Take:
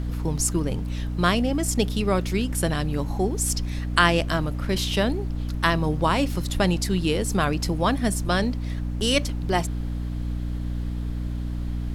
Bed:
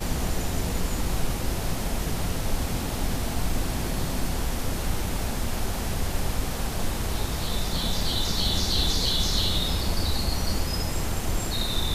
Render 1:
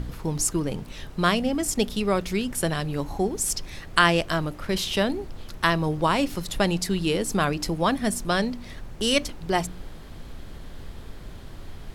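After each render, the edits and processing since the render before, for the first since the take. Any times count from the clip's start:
hum removal 60 Hz, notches 5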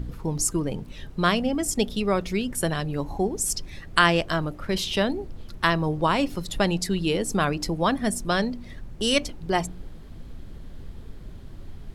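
broadband denoise 8 dB, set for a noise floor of −41 dBFS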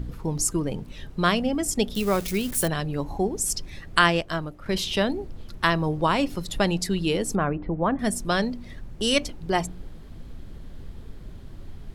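0:01.95–0:02.68: spike at every zero crossing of −24.5 dBFS
0:04.05–0:04.66: expander for the loud parts, over −32 dBFS
0:07.35–0:07.99: Gaussian smoothing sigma 4.3 samples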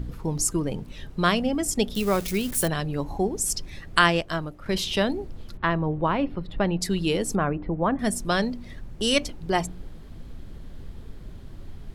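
0:05.57–0:06.81: high-frequency loss of the air 460 metres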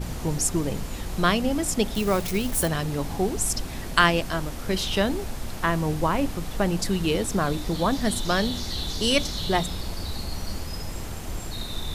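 mix in bed −6.5 dB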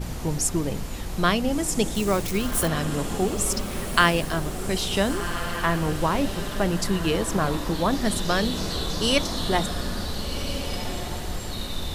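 feedback delay with all-pass diffusion 1,464 ms, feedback 40%, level −8.5 dB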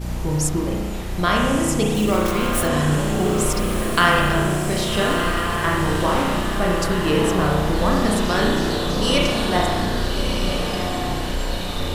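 feedback delay with all-pass diffusion 1,226 ms, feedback 54%, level −7 dB
spring reverb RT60 1.4 s, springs 33 ms, chirp 60 ms, DRR −2.5 dB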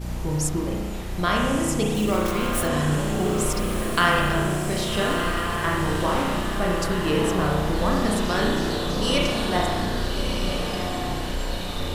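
level −3.5 dB

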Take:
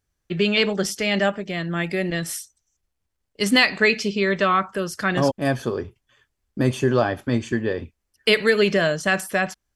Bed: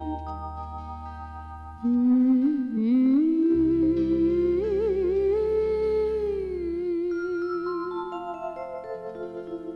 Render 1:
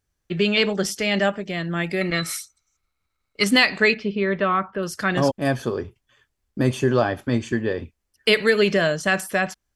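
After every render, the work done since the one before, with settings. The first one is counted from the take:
0:02.01–0:03.44: hollow resonant body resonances 1,300/2,200/3,900 Hz, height 17 dB, ringing for 20 ms
0:03.94–0:04.83: high-frequency loss of the air 370 metres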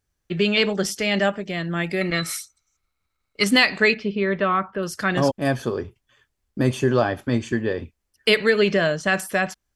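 0:08.36–0:09.13: high-frequency loss of the air 50 metres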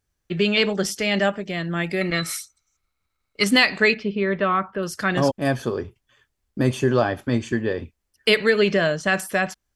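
0:04.03–0:04.43: high-frequency loss of the air 58 metres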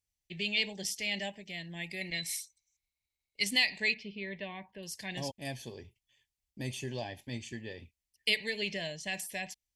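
Chebyshev band-stop filter 870–2,000 Hz, order 2
guitar amp tone stack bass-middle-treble 5-5-5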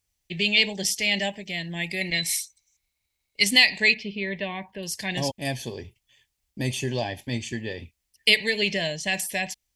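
level +10.5 dB

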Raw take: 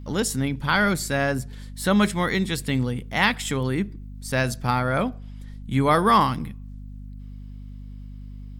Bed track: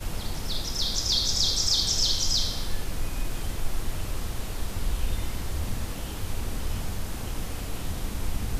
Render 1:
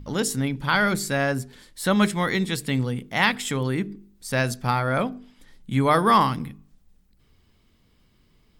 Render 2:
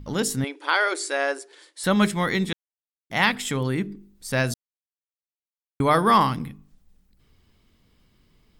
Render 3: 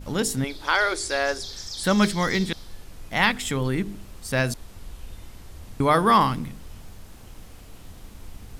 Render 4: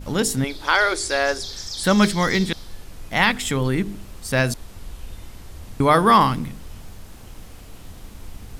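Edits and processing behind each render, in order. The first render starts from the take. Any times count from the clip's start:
hum removal 50 Hz, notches 9
0:00.44–0:01.84: linear-phase brick-wall band-pass 290–11,000 Hz; 0:02.53–0:03.10: silence; 0:04.54–0:05.80: silence
mix in bed track −12 dB
level +3.5 dB; brickwall limiter −3 dBFS, peak gain reduction 2.5 dB

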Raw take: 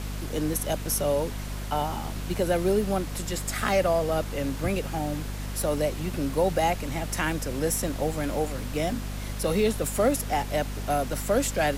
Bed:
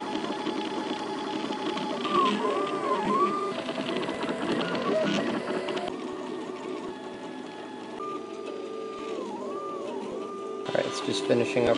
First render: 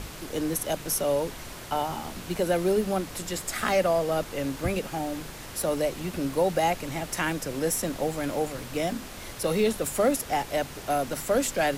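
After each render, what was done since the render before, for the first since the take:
mains-hum notches 50/100/150/200/250 Hz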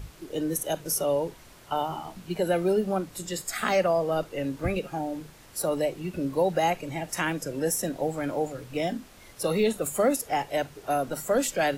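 noise reduction from a noise print 11 dB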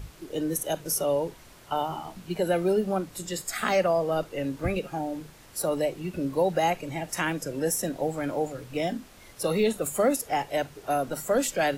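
no processing that can be heard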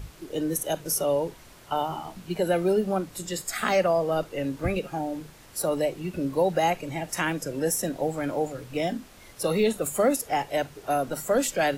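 level +1 dB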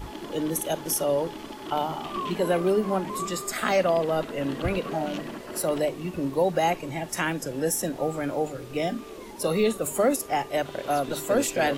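mix in bed −8 dB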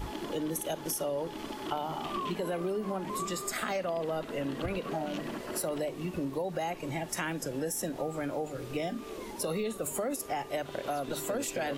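brickwall limiter −17 dBFS, peak gain reduction 5.5 dB
downward compressor 3 to 1, threshold −32 dBFS, peak gain reduction 8.5 dB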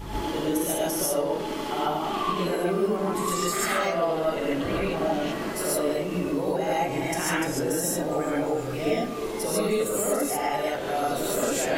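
feedback echo with a low-pass in the loop 100 ms, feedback 80%, low-pass 2,000 Hz, level −13 dB
reverb whose tail is shaped and stops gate 170 ms rising, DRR −7.5 dB

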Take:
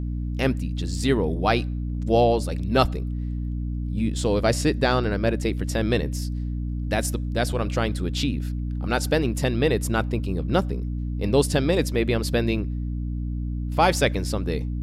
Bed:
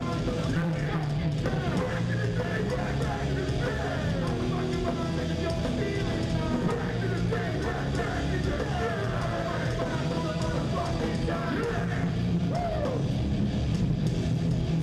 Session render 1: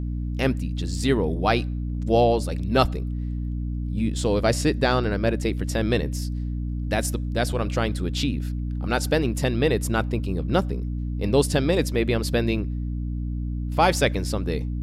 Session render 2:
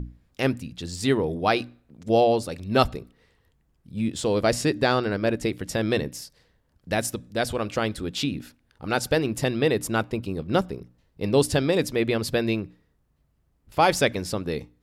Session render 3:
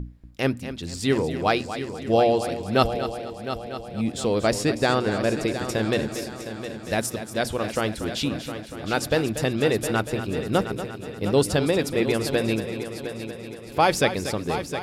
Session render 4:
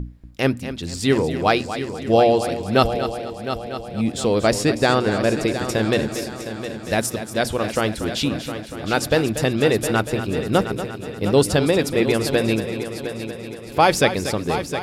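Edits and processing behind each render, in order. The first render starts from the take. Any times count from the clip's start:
no processing that can be heard
mains-hum notches 60/120/180/240/300 Hz
echo machine with several playback heads 237 ms, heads first and third, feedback 59%, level −11.5 dB
level +4 dB; brickwall limiter −2 dBFS, peak gain reduction 1.5 dB

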